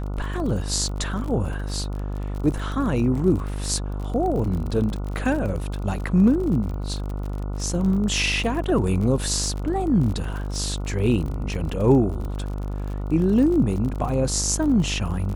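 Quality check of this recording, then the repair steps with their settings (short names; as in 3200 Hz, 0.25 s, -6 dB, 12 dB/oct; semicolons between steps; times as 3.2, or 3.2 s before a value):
buzz 50 Hz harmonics 29 -28 dBFS
crackle 43/s -30 dBFS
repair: de-click; de-hum 50 Hz, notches 29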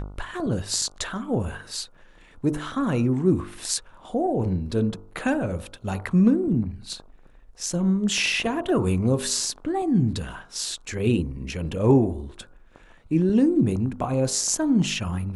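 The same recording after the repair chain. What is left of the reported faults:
none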